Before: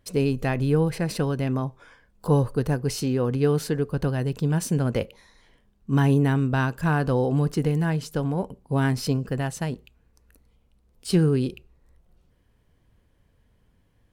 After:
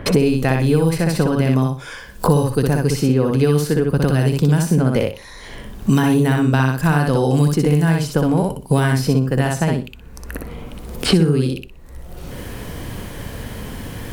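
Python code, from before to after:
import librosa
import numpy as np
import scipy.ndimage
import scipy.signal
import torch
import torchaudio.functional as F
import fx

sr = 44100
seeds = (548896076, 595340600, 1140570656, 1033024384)

p1 = fx.high_shelf(x, sr, hz=6900.0, db=6.0)
p2 = p1 + fx.echo_feedback(p1, sr, ms=61, feedback_pct=19, wet_db=-3.0, dry=0)
p3 = fx.band_squash(p2, sr, depth_pct=100)
y = p3 * librosa.db_to_amplitude(5.0)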